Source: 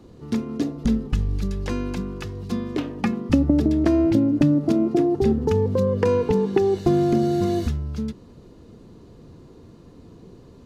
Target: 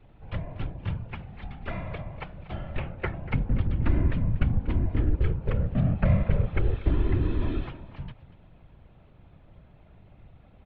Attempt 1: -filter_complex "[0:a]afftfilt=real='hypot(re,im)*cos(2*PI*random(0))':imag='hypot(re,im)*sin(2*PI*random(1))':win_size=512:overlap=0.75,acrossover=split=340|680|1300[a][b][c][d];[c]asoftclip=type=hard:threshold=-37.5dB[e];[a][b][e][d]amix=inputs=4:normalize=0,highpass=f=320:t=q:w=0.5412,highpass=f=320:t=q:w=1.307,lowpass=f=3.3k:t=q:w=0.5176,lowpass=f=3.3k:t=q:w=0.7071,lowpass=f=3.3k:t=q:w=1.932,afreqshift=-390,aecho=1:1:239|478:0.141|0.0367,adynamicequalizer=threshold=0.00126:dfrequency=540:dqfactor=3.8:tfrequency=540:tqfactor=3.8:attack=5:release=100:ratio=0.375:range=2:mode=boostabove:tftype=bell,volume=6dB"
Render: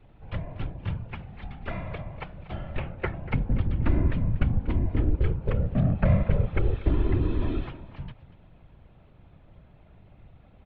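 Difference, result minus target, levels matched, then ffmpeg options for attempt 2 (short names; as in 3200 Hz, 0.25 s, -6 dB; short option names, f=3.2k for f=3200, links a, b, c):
hard clip: distortion -7 dB
-filter_complex "[0:a]afftfilt=real='hypot(re,im)*cos(2*PI*random(0))':imag='hypot(re,im)*sin(2*PI*random(1))':win_size=512:overlap=0.75,acrossover=split=340|680|1300[a][b][c][d];[c]asoftclip=type=hard:threshold=-45dB[e];[a][b][e][d]amix=inputs=4:normalize=0,highpass=f=320:t=q:w=0.5412,highpass=f=320:t=q:w=1.307,lowpass=f=3.3k:t=q:w=0.5176,lowpass=f=3.3k:t=q:w=0.7071,lowpass=f=3.3k:t=q:w=1.932,afreqshift=-390,aecho=1:1:239|478:0.141|0.0367,adynamicequalizer=threshold=0.00126:dfrequency=540:dqfactor=3.8:tfrequency=540:tqfactor=3.8:attack=5:release=100:ratio=0.375:range=2:mode=boostabove:tftype=bell,volume=6dB"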